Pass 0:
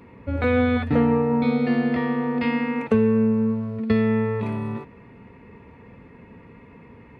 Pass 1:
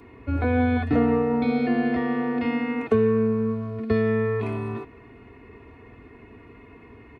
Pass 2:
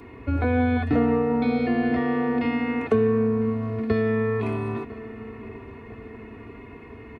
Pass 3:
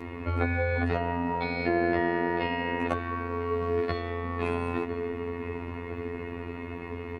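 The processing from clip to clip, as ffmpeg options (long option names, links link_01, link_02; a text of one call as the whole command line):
ffmpeg -i in.wav -filter_complex "[0:a]aecho=1:1:2.8:0.72,acrossover=split=210|1200[link_01][link_02][link_03];[link_03]alimiter=level_in=6dB:limit=-24dB:level=0:latency=1:release=53,volume=-6dB[link_04];[link_01][link_02][link_04]amix=inputs=3:normalize=0,volume=-1dB" out.wav
ffmpeg -i in.wav -filter_complex "[0:a]asplit=2[link_01][link_02];[link_02]acompressor=threshold=-29dB:ratio=6,volume=2dB[link_03];[link_01][link_03]amix=inputs=2:normalize=0,asplit=2[link_04][link_05];[link_05]adelay=1001,lowpass=frequency=2000:poles=1,volume=-16dB,asplit=2[link_06][link_07];[link_07]adelay=1001,lowpass=frequency=2000:poles=1,volume=0.53,asplit=2[link_08][link_09];[link_09]adelay=1001,lowpass=frequency=2000:poles=1,volume=0.53,asplit=2[link_10][link_11];[link_11]adelay=1001,lowpass=frequency=2000:poles=1,volume=0.53,asplit=2[link_12][link_13];[link_13]adelay=1001,lowpass=frequency=2000:poles=1,volume=0.53[link_14];[link_04][link_06][link_08][link_10][link_12][link_14]amix=inputs=6:normalize=0,volume=-3dB" out.wav
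ffmpeg -i in.wav -filter_complex "[0:a]acrossover=split=160|740[link_01][link_02][link_03];[link_01]acompressor=threshold=-42dB:ratio=4[link_04];[link_02]acompressor=threshold=-24dB:ratio=4[link_05];[link_03]acompressor=threshold=-36dB:ratio=4[link_06];[link_04][link_05][link_06]amix=inputs=3:normalize=0,afftfilt=real='re*lt(hypot(re,im),0.316)':imag='im*lt(hypot(re,im),0.316)':win_size=1024:overlap=0.75,afftfilt=real='hypot(re,im)*cos(PI*b)':imag='0':win_size=2048:overlap=0.75,volume=8.5dB" out.wav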